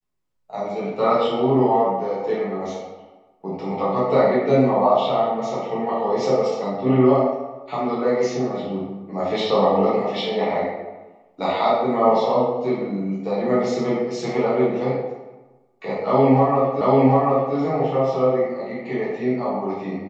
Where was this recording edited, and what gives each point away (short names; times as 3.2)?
16.81 repeat of the last 0.74 s